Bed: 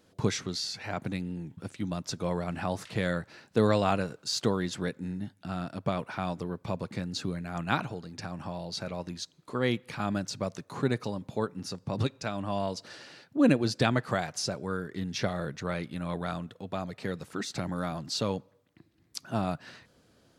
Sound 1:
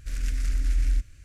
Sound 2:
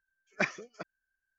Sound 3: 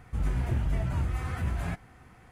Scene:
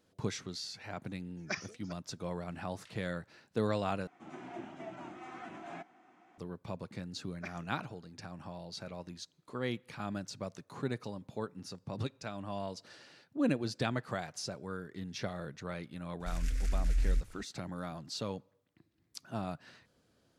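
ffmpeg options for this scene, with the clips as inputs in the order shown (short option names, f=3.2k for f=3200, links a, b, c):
-filter_complex "[2:a]asplit=2[a][b];[0:a]volume=-8dB[c];[a]equalizer=f=5.3k:w=1.6:g=11.5[d];[3:a]highpass=f=230:w=0.5412,highpass=f=230:w=1.3066,equalizer=f=330:t=q:w=4:g=8,equalizer=f=480:t=q:w=4:g=-9,equalizer=f=710:t=q:w=4:g=8,equalizer=f=1.8k:t=q:w=4:g=-3,equalizer=f=4.6k:t=q:w=4:g=-7,lowpass=f=6.6k:w=0.5412,lowpass=f=6.6k:w=1.3066[e];[c]asplit=2[f][g];[f]atrim=end=4.074[h];[e]atrim=end=2.31,asetpts=PTS-STARTPTS,volume=-7.5dB[i];[g]atrim=start=6.376[j];[d]atrim=end=1.38,asetpts=PTS-STARTPTS,volume=-9dB,afade=t=in:d=0.004:c=hsin,afade=t=out:st=1.376:d=0.004:c=hsin,adelay=1100[k];[b]atrim=end=1.38,asetpts=PTS-STARTPTS,volume=-15.5dB,afade=t=in:d=0.004:c=hsin,afade=t=out:st=1.376:d=0.004:c=hsin,adelay=7030[l];[1:a]atrim=end=1.24,asetpts=PTS-STARTPTS,volume=-6dB,afade=t=in:d=0.004:c=hsin,afade=t=out:st=1.236:d=0.004:c=hsin,adelay=714420S[m];[h][i]acrossfade=d=0.004:c1=hsin:c2=hsin[n];[n][j]acrossfade=d=0.004:c1=hsin:c2=hsin[o];[o][k][l][m]amix=inputs=4:normalize=0"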